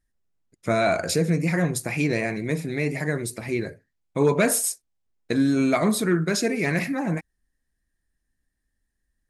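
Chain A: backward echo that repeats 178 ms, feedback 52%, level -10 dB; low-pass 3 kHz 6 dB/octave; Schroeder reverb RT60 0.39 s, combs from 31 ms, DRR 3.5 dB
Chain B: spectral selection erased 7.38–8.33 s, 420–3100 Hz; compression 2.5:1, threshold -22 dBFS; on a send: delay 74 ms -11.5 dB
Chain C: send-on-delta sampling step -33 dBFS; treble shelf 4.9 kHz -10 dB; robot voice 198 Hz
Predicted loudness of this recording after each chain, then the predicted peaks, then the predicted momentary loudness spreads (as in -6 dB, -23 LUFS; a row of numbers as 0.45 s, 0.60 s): -23.5 LUFS, -26.5 LUFS, -27.5 LUFS; -7.0 dBFS, -11.0 dBFS, -6.5 dBFS; 13 LU, 6 LU, 9 LU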